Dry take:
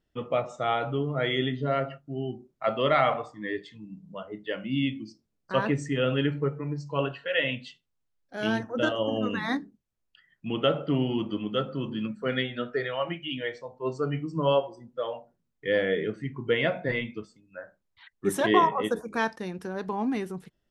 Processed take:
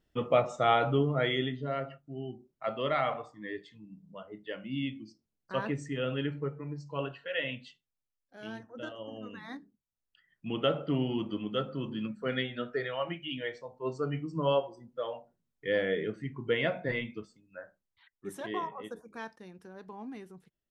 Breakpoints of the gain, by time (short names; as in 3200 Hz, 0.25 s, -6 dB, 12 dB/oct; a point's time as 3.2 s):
1 s +2 dB
1.62 s -7 dB
7.64 s -7 dB
8.42 s -15 dB
9.5 s -15 dB
10.47 s -4 dB
17.61 s -4 dB
18.28 s -14.5 dB